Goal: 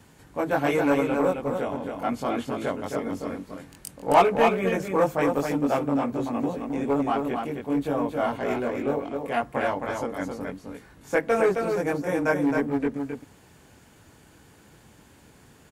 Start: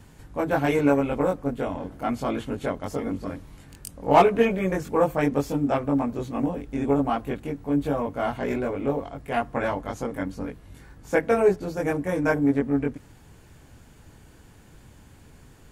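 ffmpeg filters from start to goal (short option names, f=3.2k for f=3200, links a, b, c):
-filter_complex "[0:a]highpass=f=190:p=1,acrossover=split=630[a][b];[a]volume=20.5dB,asoftclip=hard,volume=-20.5dB[c];[c][b]amix=inputs=2:normalize=0,aecho=1:1:266:0.562"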